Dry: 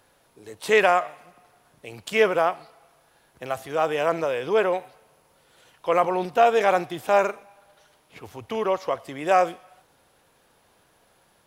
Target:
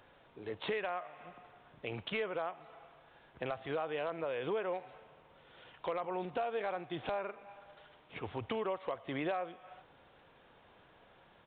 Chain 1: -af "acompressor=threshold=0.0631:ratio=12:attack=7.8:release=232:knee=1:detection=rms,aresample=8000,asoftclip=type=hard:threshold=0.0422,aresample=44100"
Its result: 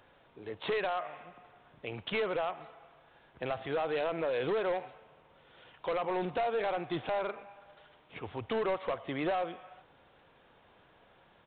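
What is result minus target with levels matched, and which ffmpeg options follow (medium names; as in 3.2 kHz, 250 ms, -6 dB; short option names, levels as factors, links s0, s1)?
compression: peak gain reduction -7 dB
-af "acompressor=threshold=0.0266:ratio=12:attack=7.8:release=232:knee=1:detection=rms,aresample=8000,asoftclip=type=hard:threshold=0.0422,aresample=44100"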